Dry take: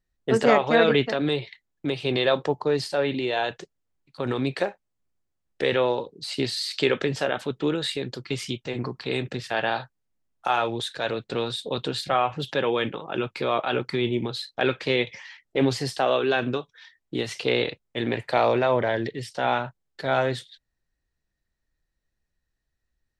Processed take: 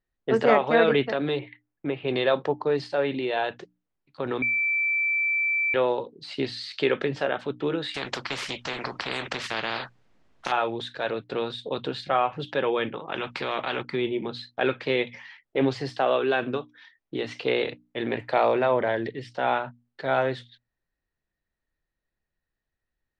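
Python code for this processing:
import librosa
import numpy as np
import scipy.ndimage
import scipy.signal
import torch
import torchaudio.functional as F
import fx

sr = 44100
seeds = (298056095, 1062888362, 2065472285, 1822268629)

y = fx.lowpass(x, sr, hz=2800.0, slope=24, at=(1.39, 2.08))
y = fx.spectral_comp(y, sr, ratio=4.0, at=(7.94, 10.52))
y = fx.spectral_comp(y, sr, ratio=2.0, at=(13.07, 13.81), fade=0.02)
y = fx.edit(y, sr, fx.bleep(start_s=4.42, length_s=1.32, hz=2330.0, db=-19.5), tone=tone)
y = scipy.signal.sosfilt(scipy.signal.bessel(2, 2800.0, 'lowpass', norm='mag', fs=sr, output='sos'), y)
y = fx.low_shelf(y, sr, hz=140.0, db=-7.0)
y = fx.hum_notches(y, sr, base_hz=60, count=5)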